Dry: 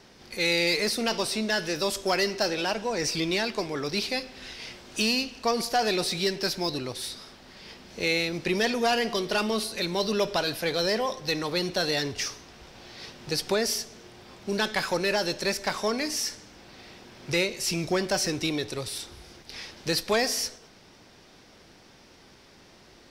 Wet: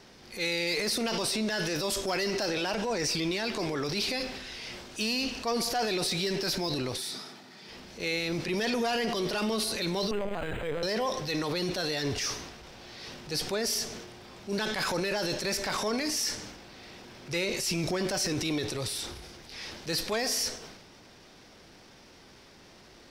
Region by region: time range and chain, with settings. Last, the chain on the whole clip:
0:06.98–0:07.69: high-pass filter 130 Hz 24 dB per octave + notch filter 2,900 Hz, Q 17 + notch comb filter 540 Hz
0:10.11–0:10.83: mains-hum notches 50/100/150/200/250/300/350/400 Hz + linear-prediction vocoder at 8 kHz pitch kept + linearly interpolated sample-rate reduction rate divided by 8×
whole clip: transient designer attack −7 dB, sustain +7 dB; brickwall limiter −21.5 dBFS

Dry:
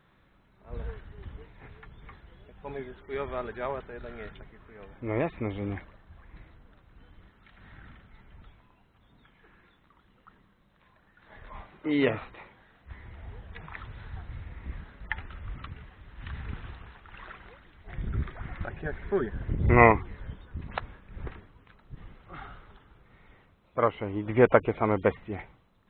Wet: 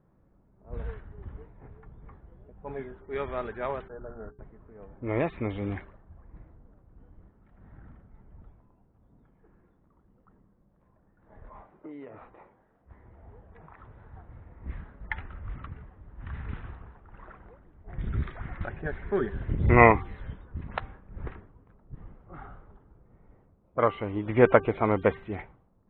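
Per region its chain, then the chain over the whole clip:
0:03.88–0:04.39: noise gate −44 dBFS, range −28 dB + Butterworth low-pass 1,600 Hz 72 dB per octave + mains-hum notches 60/120/180/240/300/360/420 Hz
0:11.49–0:14.61: low-shelf EQ 220 Hz −10 dB + downward compressor 16 to 1, threshold −39 dBFS
whole clip: hum removal 391.1 Hz, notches 4; low-pass that shuts in the quiet parts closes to 610 Hz, open at −25 dBFS; level +1 dB

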